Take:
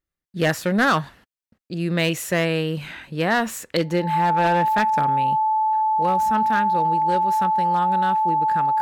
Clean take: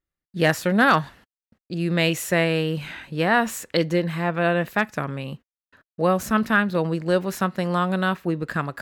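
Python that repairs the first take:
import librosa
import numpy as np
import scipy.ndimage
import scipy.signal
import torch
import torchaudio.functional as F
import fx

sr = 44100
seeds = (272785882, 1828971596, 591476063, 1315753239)

y = fx.fix_declip(x, sr, threshold_db=-13.0)
y = fx.notch(y, sr, hz=870.0, q=30.0)
y = fx.gain(y, sr, db=fx.steps((0.0, 0.0), (5.82, 5.5)))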